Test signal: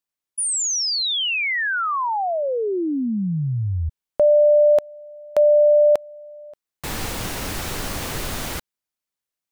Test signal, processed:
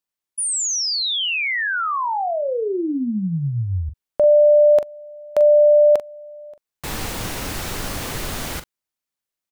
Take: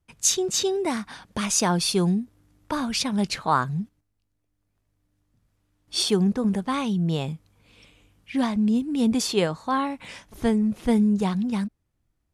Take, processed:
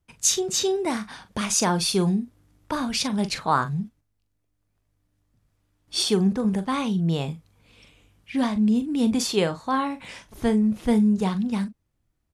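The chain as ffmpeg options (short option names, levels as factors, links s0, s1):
-filter_complex "[0:a]asplit=2[s0][s1];[s1]adelay=42,volume=0.266[s2];[s0][s2]amix=inputs=2:normalize=0"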